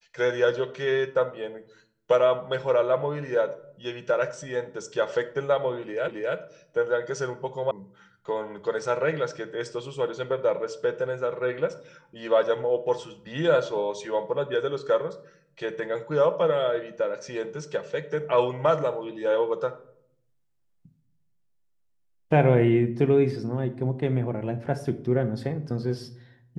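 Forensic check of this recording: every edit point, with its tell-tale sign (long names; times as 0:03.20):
0:06.08: the same again, the last 0.27 s
0:07.71: cut off before it has died away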